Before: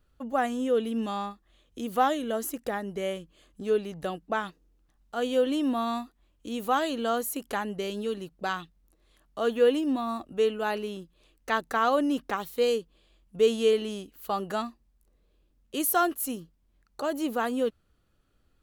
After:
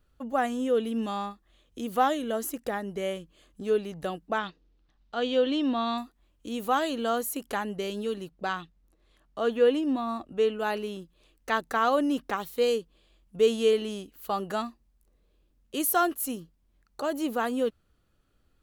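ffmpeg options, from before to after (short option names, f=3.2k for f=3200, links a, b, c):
-filter_complex "[0:a]asettb=1/sr,asplit=3[a][b][c];[a]atrim=end=4.384[d];[b]atrim=start=4.38:end=5.98,asetpts=PTS-STARTPTS,afade=t=in:d=0.004:c=qsin,afade=t=out:st=1.596:d=0.004:c=qsin,lowpass=f=4.1k:t=q:w=1.7[e];[c]atrim=start=5.976[f];[d][e]acrossfade=d=0.004:c1=hsin:c2=qsin[g];[g][f]acrossfade=d=0.004:c1=qsin:c2=hsin,asettb=1/sr,asplit=3[h][i][j];[h]atrim=end=8.304[k];[i]atrim=start=8.3:end=10.59,asetpts=PTS-STARTPTS,afade=t=in:d=0.004:c=qsin,afade=t=out:st=2.286:d=0.004:c=qsin,highshelf=f=7.7k:g=-10[l];[j]atrim=start=10.586[m];[k][l]acrossfade=d=0.004:c1=hsin:c2=qsin[n];[n][m]acrossfade=d=0.004:c1=qsin:c2=hsin"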